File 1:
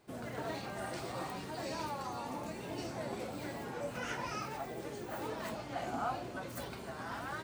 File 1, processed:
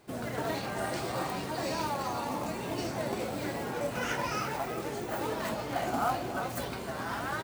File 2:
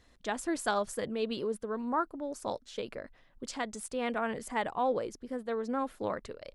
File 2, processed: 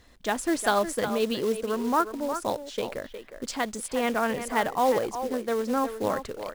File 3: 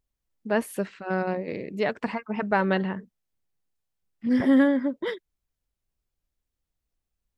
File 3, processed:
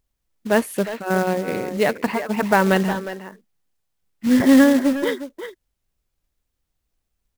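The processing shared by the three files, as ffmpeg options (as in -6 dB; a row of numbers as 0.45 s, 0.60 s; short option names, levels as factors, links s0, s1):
-filter_complex "[0:a]asplit=2[s0][s1];[s1]adelay=360,highpass=300,lowpass=3400,asoftclip=type=hard:threshold=0.112,volume=0.355[s2];[s0][s2]amix=inputs=2:normalize=0,acrusher=bits=4:mode=log:mix=0:aa=0.000001,volume=2.11"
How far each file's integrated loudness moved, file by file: +7.0 LU, +7.0 LU, +7.0 LU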